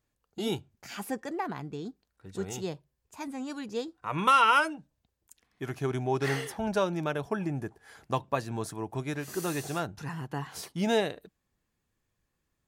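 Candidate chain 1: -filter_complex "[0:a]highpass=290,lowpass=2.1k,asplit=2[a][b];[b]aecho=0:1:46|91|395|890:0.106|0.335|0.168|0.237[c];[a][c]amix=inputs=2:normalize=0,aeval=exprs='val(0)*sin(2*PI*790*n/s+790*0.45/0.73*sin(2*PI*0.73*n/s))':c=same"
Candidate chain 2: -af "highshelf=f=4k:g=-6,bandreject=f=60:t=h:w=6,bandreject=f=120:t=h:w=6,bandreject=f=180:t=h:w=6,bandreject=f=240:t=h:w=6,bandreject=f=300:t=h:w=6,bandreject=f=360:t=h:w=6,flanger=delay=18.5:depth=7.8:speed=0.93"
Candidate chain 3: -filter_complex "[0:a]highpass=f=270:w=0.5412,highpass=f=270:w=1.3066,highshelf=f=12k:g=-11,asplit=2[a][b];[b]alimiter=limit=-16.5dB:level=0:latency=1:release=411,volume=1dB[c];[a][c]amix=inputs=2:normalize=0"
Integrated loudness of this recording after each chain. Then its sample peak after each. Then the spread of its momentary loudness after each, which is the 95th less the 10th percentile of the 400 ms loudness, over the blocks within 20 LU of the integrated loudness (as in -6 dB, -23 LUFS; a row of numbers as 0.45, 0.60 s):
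-34.5, -34.5, -26.5 LUFS; -12.0, -14.0, -6.0 dBFS; 16, 16, 16 LU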